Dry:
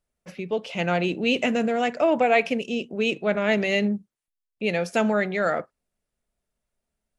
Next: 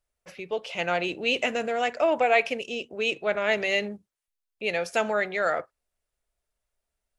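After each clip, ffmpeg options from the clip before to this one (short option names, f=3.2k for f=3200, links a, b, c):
-af "equalizer=f=200:w=1:g=-13"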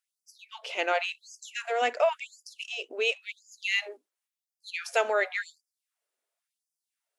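-af "afftfilt=real='re*gte(b*sr/1024,240*pow(4800/240,0.5+0.5*sin(2*PI*0.93*pts/sr)))':imag='im*gte(b*sr/1024,240*pow(4800/240,0.5+0.5*sin(2*PI*0.93*pts/sr)))':win_size=1024:overlap=0.75"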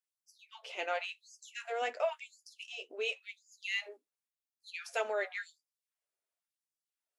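-af "flanger=delay=9.2:depth=3.4:regen=-43:speed=0.99:shape=triangular,volume=-4.5dB"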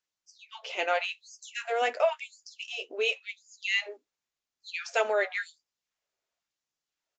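-af "aresample=16000,aresample=44100,volume=7.5dB"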